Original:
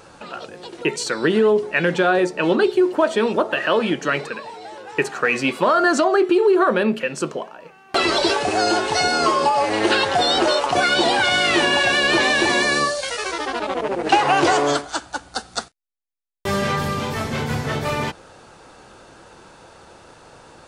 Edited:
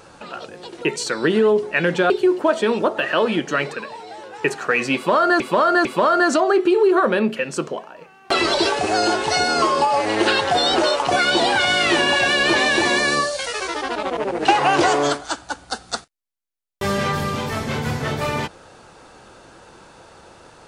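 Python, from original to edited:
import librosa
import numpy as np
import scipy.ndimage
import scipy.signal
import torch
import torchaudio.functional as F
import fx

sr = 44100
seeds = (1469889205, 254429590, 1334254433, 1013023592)

y = fx.edit(x, sr, fx.cut(start_s=2.1, length_s=0.54),
    fx.repeat(start_s=5.49, length_s=0.45, count=3), tone=tone)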